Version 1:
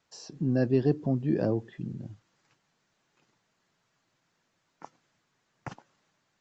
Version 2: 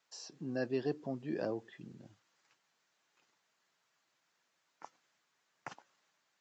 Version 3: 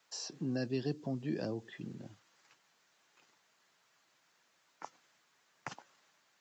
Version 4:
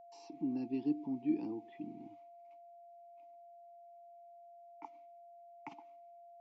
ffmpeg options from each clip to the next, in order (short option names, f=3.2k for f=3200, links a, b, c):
-af "highpass=f=800:p=1,volume=-2dB"
-filter_complex "[0:a]acrossover=split=240|3000[a][b][c];[b]acompressor=threshold=-47dB:ratio=4[d];[a][d][c]amix=inputs=3:normalize=0,volume=6.5dB"
-filter_complex "[0:a]agate=range=-33dB:threshold=-60dB:ratio=3:detection=peak,asplit=3[a][b][c];[a]bandpass=f=300:t=q:w=8,volume=0dB[d];[b]bandpass=f=870:t=q:w=8,volume=-6dB[e];[c]bandpass=f=2.24k:t=q:w=8,volume=-9dB[f];[d][e][f]amix=inputs=3:normalize=0,aeval=exprs='val(0)+0.000794*sin(2*PI*690*n/s)':c=same,volume=8dB"